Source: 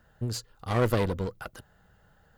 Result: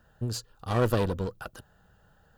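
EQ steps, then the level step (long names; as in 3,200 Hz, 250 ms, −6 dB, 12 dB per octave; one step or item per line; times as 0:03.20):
notch filter 2,100 Hz, Q 5.1
0.0 dB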